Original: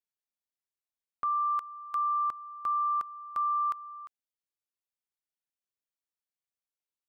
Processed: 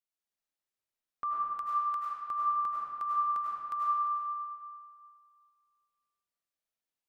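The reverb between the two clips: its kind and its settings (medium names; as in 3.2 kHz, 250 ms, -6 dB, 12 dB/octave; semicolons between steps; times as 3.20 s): algorithmic reverb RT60 2.2 s, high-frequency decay 0.65×, pre-delay 60 ms, DRR -5.5 dB; trim -4 dB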